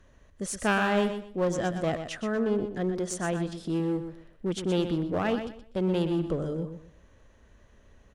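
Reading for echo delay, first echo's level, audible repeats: 123 ms, -9.0 dB, 3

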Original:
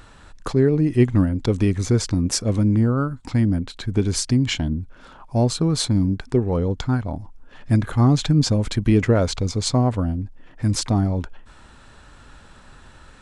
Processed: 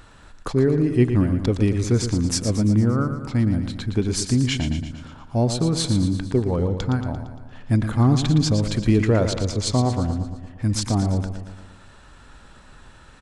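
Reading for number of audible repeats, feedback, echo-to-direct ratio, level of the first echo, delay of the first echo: 6, 56%, -7.5 dB, -9.0 dB, 115 ms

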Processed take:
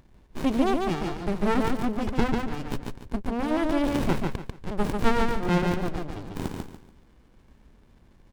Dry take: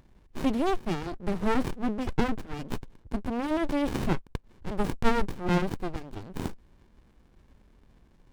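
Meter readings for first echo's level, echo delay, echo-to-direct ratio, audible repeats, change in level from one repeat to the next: -3.5 dB, 144 ms, -3.0 dB, 3, -11.0 dB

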